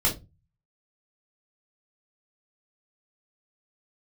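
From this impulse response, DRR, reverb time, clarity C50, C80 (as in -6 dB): -5.5 dB, 0.25 s, 11.5 dB, 21.0 dB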